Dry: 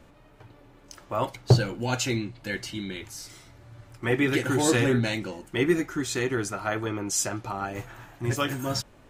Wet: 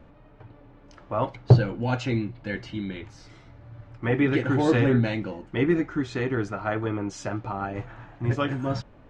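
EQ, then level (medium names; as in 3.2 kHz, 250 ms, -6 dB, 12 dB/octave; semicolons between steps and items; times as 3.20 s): tape spacing loss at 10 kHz 40 dB; treble shelf 3.4 kHz +7 dB; band-stop 370 Hz, Q 12; +4.0 dB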